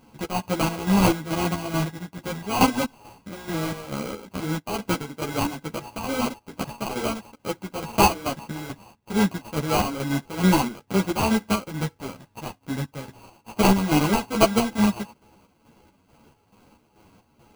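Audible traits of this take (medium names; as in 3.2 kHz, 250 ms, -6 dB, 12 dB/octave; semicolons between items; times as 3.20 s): a buzz of ramps at a fixed pitch in blocks of 16 samples; chopped level 2.3 Hz, depth 60%, duty 55%; aliases and images of a low sample rate 1.8 kHz, jitter 0%; a shimmering, thickened sound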